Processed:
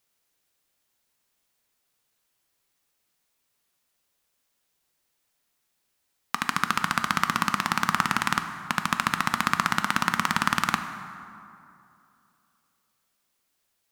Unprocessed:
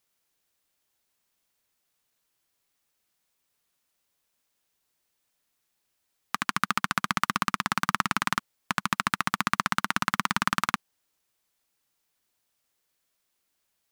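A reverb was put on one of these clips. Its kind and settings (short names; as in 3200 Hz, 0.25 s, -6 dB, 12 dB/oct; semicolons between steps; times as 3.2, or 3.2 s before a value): plate-style reverb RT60 2.7 s, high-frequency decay 0.5×, DRR 7.5 dB; gain +1.5 dB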